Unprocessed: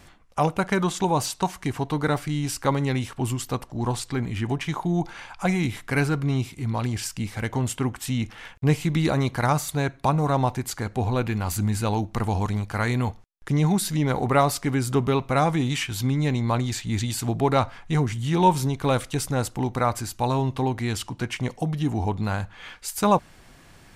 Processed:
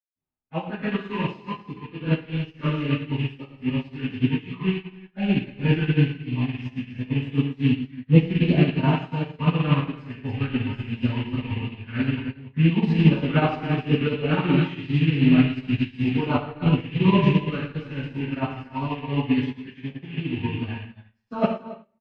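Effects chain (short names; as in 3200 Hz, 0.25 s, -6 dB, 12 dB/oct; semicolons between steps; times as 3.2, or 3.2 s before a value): rattling part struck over -32 dBFS, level -17 dBFS; speed mistake 44.1 kHz file played as 48 kHz; LPF 3200 Hz 24 dB/oct; low shelf 95 Hz -9 dB; LFO notch sine 2.8 Hz 610–2000 Hz; low shelf 470 Hz +6 dB; loudspeakers at several distances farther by 39 m -6 dB, 98 m -6 dB; spectral noise reduction 8 dB; reverb RT60 0.80 s, pre-delay 0.155 s; upward expander 2.5:1, over -28 dBFS; gain -5 dB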